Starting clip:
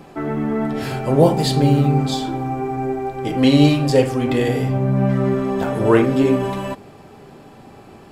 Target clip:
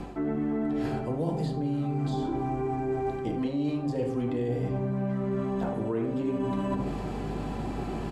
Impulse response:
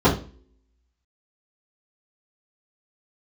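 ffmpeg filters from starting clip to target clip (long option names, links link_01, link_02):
-filter_complex "[0:a]asplit=2[link_01][link_02];[1:a]atrim=start_sample=2205[link_03];[link_02][link_03]afir=irnorm=-1:irlink=0,volume=-27.5dB[link_04];[link_01][link_04]amix=inputs=2:normalize=0,aeval=exprs='val(0)+0.00891*(sin(2*PI*50*n/s)+sin(2*PI*2*50*n/s)/2+sin(2*PI*3*50*n/s)/3+sin(2*PI*4*50*n/s)/4+sin(2*PI*5*50*n/s)/5)':channel_layout=same,acrossover=split=420|1300[link_05][link_06][link_07];[link_05]acompressor=threshold=-17dB:ratio=4[link_08];[link_06]acompressor=threshold=-24dB:ratio=4[link_09];[link_07]acompressor=threshold=-42dB:ratio=4[link_10];[link_08][link_09][link_10]amix=inputs=3:normalize=0,aecho=1:1:75:0.237,areverse,acompressor=threshold=-32dB:ratio=8,areverse,lowpass=9700,bandreject=frequency=5300:width=25,volume=5dB"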